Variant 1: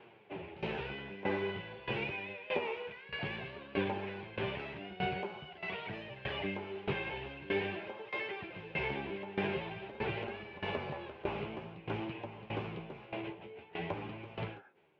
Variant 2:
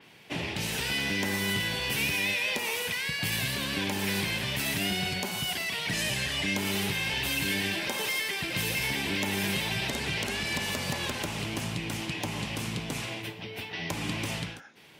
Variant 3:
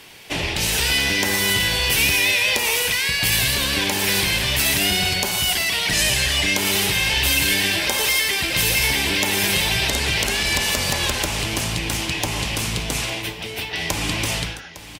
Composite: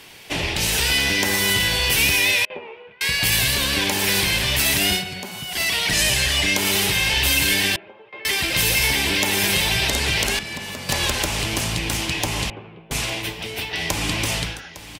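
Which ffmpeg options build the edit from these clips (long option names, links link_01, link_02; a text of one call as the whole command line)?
ffmpeg -i take0.wav -i take1.wav -i take2.wav -filter_complex "[0:a]asplit=3[link_01][link_02][link_03];[1:a]asplit=2[link_04][link_05];[2:a]asplit=6[link_06][link_07][link_08][link_09][link_10][link_11];[link_06]atrim=end=2.452[link_12];[link_01]atrim=start=2.448:end=3.012[link_13];[link_07]atrim=start=3.008:end=5.04[link_14];[link_04]atrim=start=4.94:end=5.61[link_15];[link_08]atrim=start=5.51:end=7.762[link_16];[link_02]atrim=start=7.758:end=8.252[link_17];[link_09]atrim=start=8.248:end=10.392[link_18];[link_05]atrim=start=10.388:end=10.892[link_19];[link_10]atrim=start=10.888:end=12.502[link_20];[link_03]atrim=start=12.498:end=12.912[link_21];[link_11]atrim=start=12.908[link_22];[link_12][link_13]acrossfade=duration=0.004:curve1=hsin:curve2=hsin[link_23];[link_23][link_14]acrossfade=duration=0.004:curve1=hsin:curve2=hsin[link_24];[link_24][link_15]acrossfade=duration=0.1:curve1=tri:curve2=tri[link_25];[link_25][link_16]acrossfade=duration=0.1:curve1=tri:curve2=tri[link_26];[link_26][link_17]acrossfade=duration=0.004:curve1=hsin:curve2=hsin[link_27];[link_27][link_18]acrossfade=duration=0.004:curve1=hsin:curve2=hsin[link_28];[link_28][link_19]acrossfade=duration=0.004:curve1=hsin:curve2=hsin[link_29];[link_29][link_20]acrossfade=duration=0.004:curve1=hsin:curve2=hsin[link_30];[link_30][link_21]acrossfade=duration=0.004:curve1=hsin:curve2=hsin[link_31];[link_31][link_22]acrossfade=duration=0.004:curve1=hsin:curve2=hsin" out.wav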